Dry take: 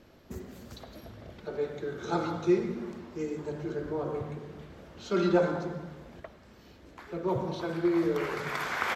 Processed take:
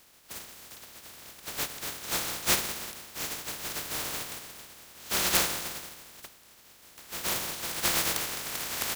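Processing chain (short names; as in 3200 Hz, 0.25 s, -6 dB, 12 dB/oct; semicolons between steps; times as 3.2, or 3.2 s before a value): spectral contrast lowered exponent 0.11; gain -1 dB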